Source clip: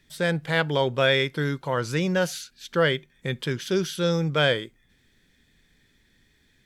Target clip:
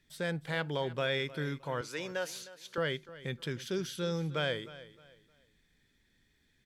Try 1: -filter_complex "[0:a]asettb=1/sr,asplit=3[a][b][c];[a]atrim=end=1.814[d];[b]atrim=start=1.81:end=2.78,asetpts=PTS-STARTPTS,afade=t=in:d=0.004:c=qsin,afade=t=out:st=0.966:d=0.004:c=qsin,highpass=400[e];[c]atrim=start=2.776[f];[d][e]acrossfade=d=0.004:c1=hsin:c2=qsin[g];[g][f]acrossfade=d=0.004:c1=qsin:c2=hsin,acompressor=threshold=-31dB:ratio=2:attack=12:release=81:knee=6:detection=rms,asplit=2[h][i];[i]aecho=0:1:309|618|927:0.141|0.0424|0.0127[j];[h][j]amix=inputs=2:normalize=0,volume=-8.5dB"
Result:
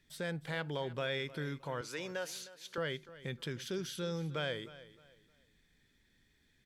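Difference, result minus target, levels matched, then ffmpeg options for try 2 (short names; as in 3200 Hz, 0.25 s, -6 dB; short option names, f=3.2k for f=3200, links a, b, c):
compressor: peak gain reduction +4.5 dB
-filter_complex "[0:a]asettb=1/sr,asplit=3[a][b][c];[a]atrim=end=1.814[d];[b]atrim=start=1.81:end=2.78,asetpts=PTS-STARTPTS,afade=t=in:d=0.004:c=qsin,afade=t=out:st=0.966:d=0.004:c=qsin,highpass=400[e];[c]atrim=start=2.776[f];[d][e]acrossfade=d=0.004:c1=hsin:c2=qsin[g];[g][f]acrossfade=d=0.004:c1=qsin:c2=hsin,acompressor=threshold=-22dB:ratio=2:attack=12:release=81:knee=6:detection=rms,asplit=2[h][i];[i]aecho=0:1:309|618|927:0.141|0.0424|0.0127[j];[h][j]amix=inputs=2:normalize=0,volume=-8.5dB"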